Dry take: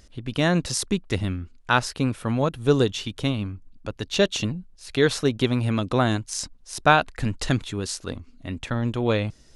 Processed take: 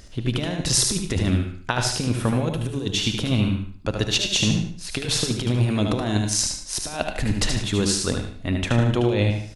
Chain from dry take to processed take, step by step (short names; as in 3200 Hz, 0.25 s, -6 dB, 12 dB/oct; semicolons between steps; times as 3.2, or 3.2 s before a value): dynamic EQ 1300 Hz, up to -8 dB, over -41 dBFS, Q 2.2; negative-ratio compressor -25 dBFS, ratio -0.5; on a send: feedback echo 75 ms, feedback 33%, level -5 dB; on the sum: non-linear reverb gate 0.13 s rising, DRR 8 dB; gain +3.5 dB